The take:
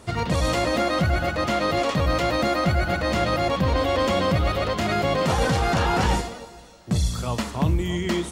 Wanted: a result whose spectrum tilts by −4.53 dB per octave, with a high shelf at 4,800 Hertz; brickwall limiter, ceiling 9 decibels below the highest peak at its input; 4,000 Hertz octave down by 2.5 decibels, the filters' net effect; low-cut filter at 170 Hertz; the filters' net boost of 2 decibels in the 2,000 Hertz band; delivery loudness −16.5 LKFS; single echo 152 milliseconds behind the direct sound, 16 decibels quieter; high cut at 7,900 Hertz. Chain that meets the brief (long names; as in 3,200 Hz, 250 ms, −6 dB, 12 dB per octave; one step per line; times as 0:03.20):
high-pass filter 170 Hz
low-pass filter 7,900 Hz
parametric band 2,000 Hz +3 dB
parametric band 4,000 Hz −7.5 dB
high-shelf EQ 4,800 Hz +7.5 dB
brickwall limiter −19.5 dBFS
single-tap delay 152 ms −16 dB
level +11.5 dB